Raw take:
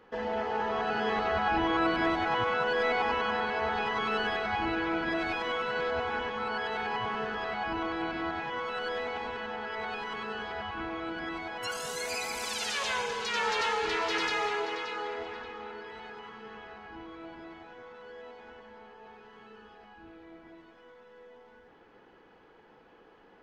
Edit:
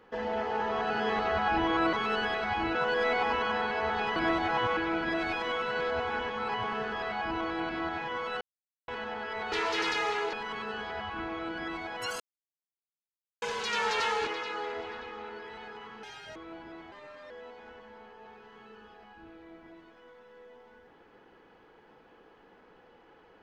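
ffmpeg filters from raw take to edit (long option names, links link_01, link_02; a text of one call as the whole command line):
ffmpeg -i in.wav -filter_complex "[0:a]asplit=17[link_01][link_02][link_03][link_04][link_05][link_06][link_07][link_08][link_09][link_10][link_11][link_12][link_13][link_14][link_15][link_16][link_17];[link_01]atrim=end=1.932[link_18];[link_02]atrim=start=3.948:end=4.772[link_19];[link_03]atrim=start=2.538:end=3.952[link_20];[link_04]atrim=start=1.928:end=2.542[link_21];[link_05]atrim=start=4.768:end=6.492[link_22];[link_06]atrim=start=6.908:end=8.83,asetpts=PTS-STARTPTS,afade=type=out:start_time=1.918:duration=0.004:curve=hsin[link_23];[link_07]atrim=start=8.83:end=9.3,asetpts=PTS-STARTPTS,volume=0[link_24];[link_08]atrim=start=9.3:end=9.942,asetpts=PTS-STARTPTS,afade=type=in:duration=0.004:curve=hsin[link_25];[link_09]atrim=start=13.878:end=14.692[link_26];[link_10]atrim=start=9.938:end=11.81,asetpts=PTS-STARTPTS,afade=type=out:start_time=1.868:duration=0.004:curve=hsin[link_27];[link_11]atrim=start=11.81:end=13.03,asetpts=PTS-STARTPTS,volume=0[link_28];[link_12]atrim=start=13.03:end=13.882,asetpts=PTS-STARTPTS,afade=type=in:duration=0.004:curve=hsin[link_29];[link_13]atrim=start=14.688:end=16.454[link_30];[link_14]atrim=start=16.45:end=17.08,asetpts=PTS-STARTPTS,asetrate=84672,aresample=44100,atrim=end_sample=14470,asetpts=PTS-STARTPTS[link_31];[link_15]atrim=start=17.076:end=17.644[link_32];[link_16]atrim=start=17.64:end=18.11,asetpts=PTS-STARTPTS,asetrate=53802,aresample=44100,atrim=end_sample=16989,asetpts=PTS-STARTPTS[link_33];[link_17]atrim=start=18.106[link_34];[link_18][link_19]acrossfade=duration=0.004:curve1=hsin:curve2=hsin[link_35];[link_35][link_20]acrossfade=duration=0.004:curve1=hsin:curve2=hsin[link_36];[link_36][link_21]acrossfade=duration=0.004:curve1=hsin:curve2=hsin[link_37];[link_37][link_22]acrossfade=duration=0.004:curve1=hsin:curve2=hsin[link_38];[link_23][link_24][link_25]concat=n=3:v=0:a=1[link_39];[link_38][link_39]acrossfade=duration=0.004:curve1=hsin:curve2=hsin[link_40];[link_40][link_26]acrossfade=duration=0.004:curve1=hsin:curve2=hsin[link_41];[link_27][link_28][link_29]concat=n=3:v=0:a=1[link_42];[link_41][link_42]acrossfade=duration=0.004:curve1=hsin:curve2=hsin[link_43];[link_43][link_30]acrossfade=duration=0.004:curve1=hsin:curve2=hsin[link_44];[link_44][link_31]acrossfade=duration=0.004:curve1=hsin:curve2=hsin[link_45];[link_45][link_32]acrossfade=duration=0.004:curve1=hsin:curve2=hsin[link_46];[link_46][link_33]acrossfade=duration=0.004:curve1=hsin:curve2=hsin[link_47];[link_47][link_34]acrossfade=duration=0.004:curve1=hsin:curve2=hsin" out.wav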